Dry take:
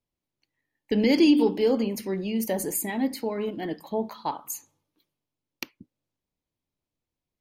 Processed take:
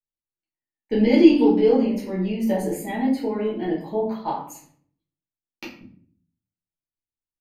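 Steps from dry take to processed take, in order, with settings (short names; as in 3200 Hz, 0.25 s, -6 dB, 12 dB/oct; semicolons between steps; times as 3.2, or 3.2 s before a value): gate with hold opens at -48 dBFS; LPF 2200 Hz 6 dB/oct; shoebox room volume 57 m³, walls mixed, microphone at 1.4 m; gain -3.5 dB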